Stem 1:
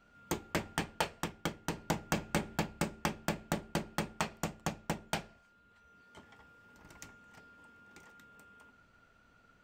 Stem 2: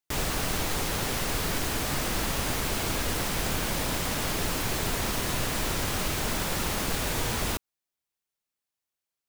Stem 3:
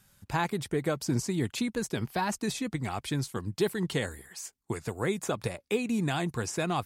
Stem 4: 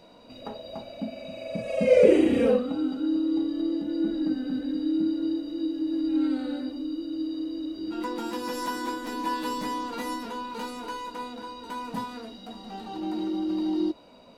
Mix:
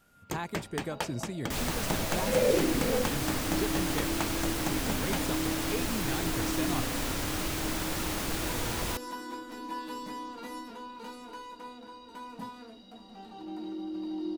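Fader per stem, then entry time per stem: −1.0, −4.0, −7.5, −8.5 decibels; 0.00, 1.40, 0.00, 0.45 seconds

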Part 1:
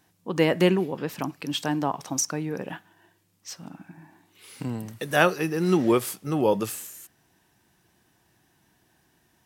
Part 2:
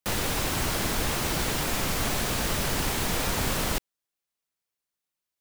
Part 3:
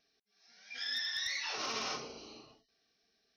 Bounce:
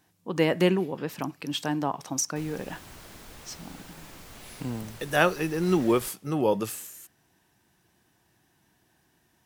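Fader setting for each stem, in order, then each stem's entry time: −2.0 dB, −19.5 dB, muted; 0.00 s, 2.30 s, muted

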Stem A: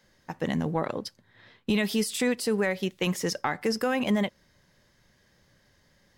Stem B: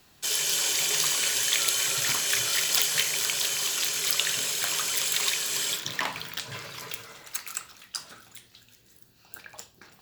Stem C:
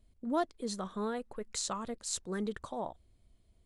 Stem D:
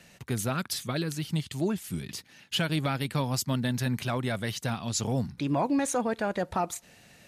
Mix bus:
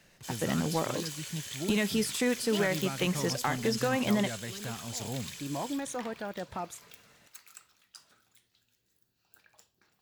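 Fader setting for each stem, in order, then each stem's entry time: −2.5, −17.0, −11.0, −8.5 decibels; 0.00, 0.00, 2.20, 0.00 seconds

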